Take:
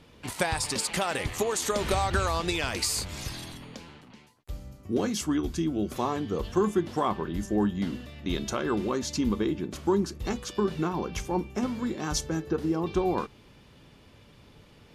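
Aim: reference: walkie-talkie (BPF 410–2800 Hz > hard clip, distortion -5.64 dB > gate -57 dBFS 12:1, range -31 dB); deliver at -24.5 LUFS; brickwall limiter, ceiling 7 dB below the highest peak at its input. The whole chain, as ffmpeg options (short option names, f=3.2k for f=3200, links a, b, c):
-af "alimiter=limit=-19dB:level=0:latency=1,highpass=410,lowpass=2.8k,asoftclip=type=hard:threshold=-36dB,agate=range=-31dB:threshold=-57dB:ratio=12,volume=15.5dB"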